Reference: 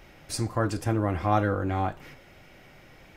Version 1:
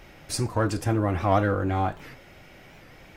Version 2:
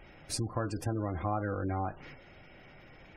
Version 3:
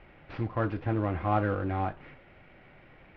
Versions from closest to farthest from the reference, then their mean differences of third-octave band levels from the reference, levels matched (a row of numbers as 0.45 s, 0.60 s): 1, 3, 2; 1.0 dB, 3.5 dB, 5.0 dB